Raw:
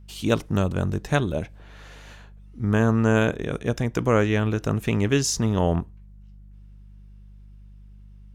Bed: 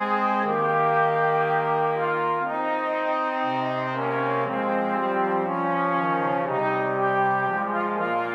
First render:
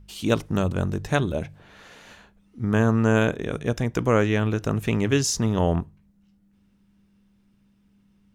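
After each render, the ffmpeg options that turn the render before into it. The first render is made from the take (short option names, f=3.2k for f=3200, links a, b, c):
-af "bandreject=f=50:t=h:w=4,bandreject=f=100:t=h:w=4,bandreject=f=150:t=h:w=4"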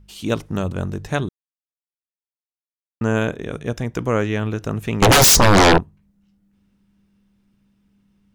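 -filter_complex "[0:a]asettb=1/sr,asplit=3[a][b][c];[a]atrim=end=5.024[d];[b]atrim=start=5.02:end=5.78,asetpts=PTS-STARTPTS,afade=t=in:d=0.004:c=qsin,afade=t=out:st=0.756:d=0.004:c=qsin,aeval=exprs='0.398*sin(PI/2*8.91*val(0)/0.398)':c=same[e];[c]atrim=start=5.776[f];[d][e]acrossfade=d=0.004:c1=hsin:c2=qsin[g];[g][f]acrossfade=d=0.004:c1=qsin:c2=hsin,asplit=3[h][i][j];[h]atrim=end=1.29,asetpts=PTS-STARTPTS,afade=t=out:st=1.286:d=0.004:c=hsin[k];[i]atrim=start=1.29:end=3.01,asetpts=PTS-STARTPTS,volume=0[l];[j]atrim=start=3.01,asetpts=PTS-STARTPTS,afade=t=in:d=0.004:c=hsin[m];[k][l][m]concat=n=3:v=0:a=1"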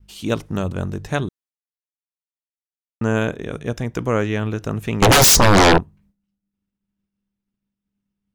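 -af "agate=range=-33dB:threshold=-49dB:ratio=3:detection=peak"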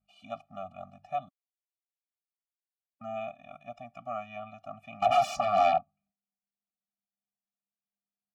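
-filter_complex "[0:a]asplit=3[a][b][c];[a]bandpass=f=730:t=q:w=8,volume=0dB[d];[b]bandpass=f=1.09k:t=q:w=8,volume=-6dB[e];[c]bandpass=f=2.44k:t=q:w=8,volume=-9dB[f];[d][e][f]amix=inputs=3:normalize=0,afftfilt=real='re*eq(mod(floor(b*sr/1024/280),2),0)':imag='im*eq(mod(floor(b*sr/1024/280),2),0)':win_size=1024:overlap=0.75"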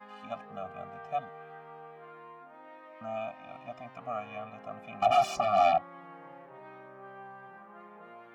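-filter_complex "[1:a]volume=-25.5dB[a];[0:a][a]amix=inputs=2:normalize=0"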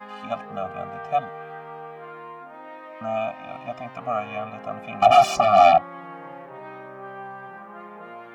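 -af "volume=10dB"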